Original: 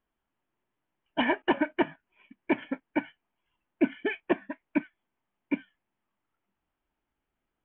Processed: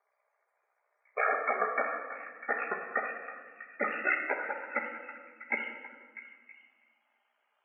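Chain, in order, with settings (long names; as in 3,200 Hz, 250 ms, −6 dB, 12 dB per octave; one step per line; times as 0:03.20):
pitch glide at a constant tempo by −6 semitones ending unshifted
high-pass filter 500 Hz 24 dB per octave
high-shelf EQ 2,100 Hz +6 dB
in parallel at +2.5 dB: downward compressor, threshold −39 dBFS, peak gain reduction 15 dB
on the sum: brickwall limiter −22 dBFS, peak gain reduction 9 dB
ring modulation 31 Hz
spectral peaks only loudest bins 64
on a send: echo through a band-pass that steps 324 ms, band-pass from 1,200 Hz, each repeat 0.7 octaves, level −11 dB
on the sum: rectangular room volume 1,500 cubic metres, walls mixed, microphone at 1.3 metres
level +5 dB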